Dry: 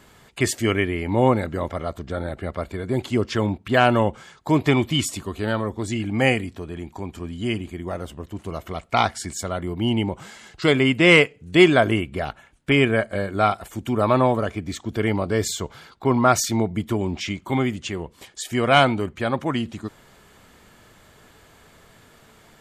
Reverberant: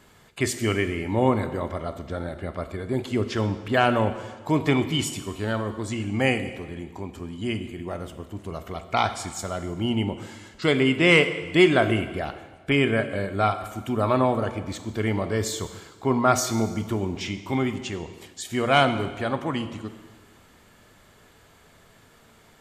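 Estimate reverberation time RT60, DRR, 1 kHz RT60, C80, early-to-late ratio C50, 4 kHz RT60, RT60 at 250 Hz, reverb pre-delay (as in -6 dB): 1.4 s, 9.0 dB, 1.4 s, 12.5 dB, 11.0 dB, 1.3 s, 1.4 s, 4 ms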